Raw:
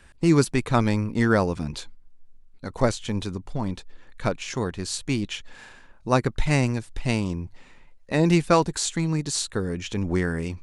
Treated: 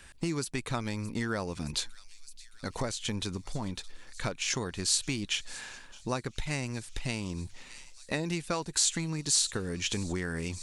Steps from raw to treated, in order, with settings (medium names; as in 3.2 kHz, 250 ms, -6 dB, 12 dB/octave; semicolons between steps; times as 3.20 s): on a send: feedback echo behind a high-pass 617 ms, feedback 74%, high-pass 3.8 kHz, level -20 dB; on the sum: compression 6:1, threshold -28 dBFS, peak gain reduction 14 dB; treble shelf 2 kHz +9.5 dB; trim -2.5 dB